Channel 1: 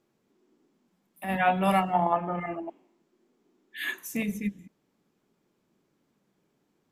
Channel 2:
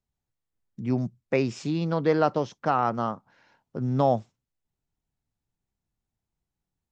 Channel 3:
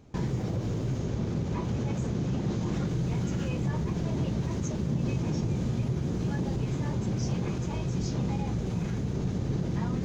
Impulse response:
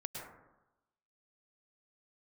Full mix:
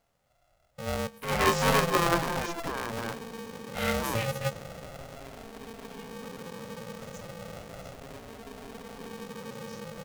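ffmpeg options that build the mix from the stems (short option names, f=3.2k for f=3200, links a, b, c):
-filter_complex "[0:a]volume=-1dB[a];[1:a]highpass=40,bass=f=250:g=2,treble=f=4k:g=13,alimiter=limit=-18dB:level=0:latency=1,volume=-5.5dB,asplit=2[b][c];[c]volume=-20.5dB[d];[2:a]alimiter=level_in=2.5dB:limit=-24dB:level=0:latency=1:release=25,volume=-2.5dB,asplit=2[e][f];[f]afreqshift=0.34[g];[e][g]amix=inputs=2:normalize=1,adelay=2500,volume=-6.5dB[h];[3:a]atrim=start_sample=2205[i];[d][i]afir=irnorm=-1:irlink=0[j];[a][b][h][j]amix=inputs=4:normalize=0,aeval=exprs='val(0)*sgn(sin(2*PI*340*n/s))':c=same"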